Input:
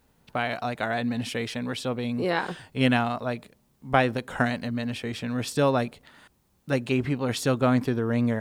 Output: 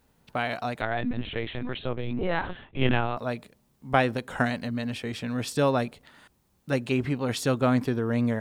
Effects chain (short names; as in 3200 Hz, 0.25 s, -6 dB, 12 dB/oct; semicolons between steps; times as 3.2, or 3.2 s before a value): 0.81–3.17 LPC vocoder at 8 kHz pitch kept; gain -1 dB